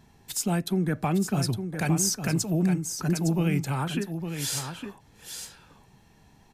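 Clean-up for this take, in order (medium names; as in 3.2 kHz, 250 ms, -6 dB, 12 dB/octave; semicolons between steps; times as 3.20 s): inverse comb 860 ms -8 dB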